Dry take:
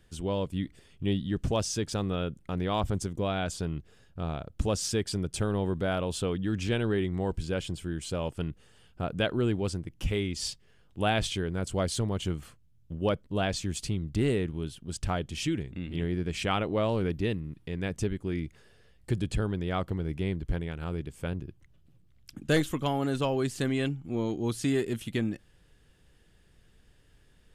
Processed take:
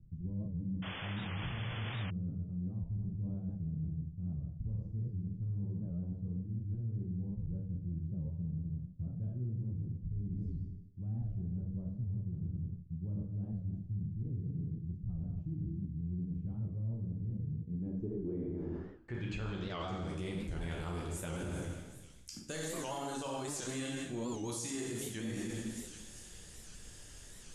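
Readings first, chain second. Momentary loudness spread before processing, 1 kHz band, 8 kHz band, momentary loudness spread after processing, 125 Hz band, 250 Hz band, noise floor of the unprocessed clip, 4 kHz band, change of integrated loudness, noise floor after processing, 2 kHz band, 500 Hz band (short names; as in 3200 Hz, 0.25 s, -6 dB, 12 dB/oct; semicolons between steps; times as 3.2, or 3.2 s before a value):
8 LU, -12.5 dB, -7.0 dB, 4 LU, -4.5 dB, -8.5 dB, -61 dBFS, -12.5 dB, -8.5 dB, -52 dBFS, -11.5 dB, -15.0 dB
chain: low-pass sweep 140 Hz -> 11000 Hz, 17.5–20.24; on a send: thin delay 0.392 s, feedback 51%, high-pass 3500 Hz, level -19 dB; on the sum: dynamic EQ 990 Hz, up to +4 dB, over -47 dBFS, Q 1.2; plate-style reverb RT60 1.2 s, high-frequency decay 0.85×, DRR -2.5 dB; reverse; compressor 8:1, threshold -38 dBFS, peak gain reduction 21 dB; reverse; bell 6600 Hz +14.5 dB 1 oct; painted sound noise, 0.82–2.11, 240–3500 Hz -47 dBFS; limiter -33.5 dBFS, peak gain reduction 9 dB; record warp 78 rpm, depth 160 cents; gain +3 dB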